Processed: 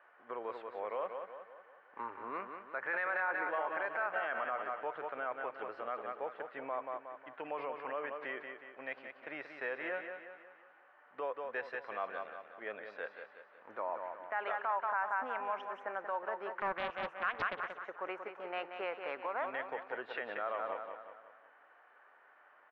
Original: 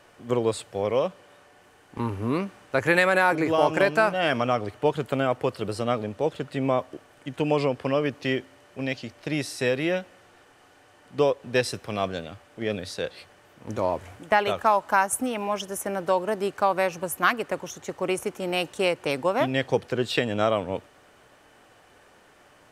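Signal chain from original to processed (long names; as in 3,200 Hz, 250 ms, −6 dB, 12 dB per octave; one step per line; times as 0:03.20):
transistor ladder low-pass 2,000 Hz, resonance 35%
repeating echo 182 ms, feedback 47%, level −8 dB
brickwall limiter −23 dBFS, peak gain reduction 10.5 dB
high-pass filter 720 Hz 12 dB per octave
0:16.58–0:17.85: highs frequency-modulated by the lows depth 0.44 ms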